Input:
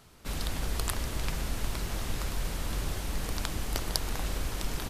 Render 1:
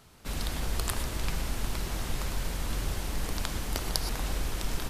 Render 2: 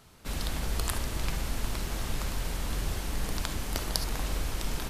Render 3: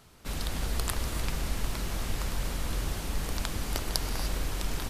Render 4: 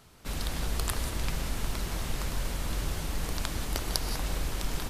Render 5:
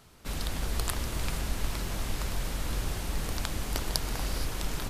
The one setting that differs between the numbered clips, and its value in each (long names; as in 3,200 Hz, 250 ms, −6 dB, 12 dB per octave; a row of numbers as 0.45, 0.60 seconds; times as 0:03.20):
reverb whose tail is shaped and stops, gate: 140, 90, 320, 210, 500 milliseconds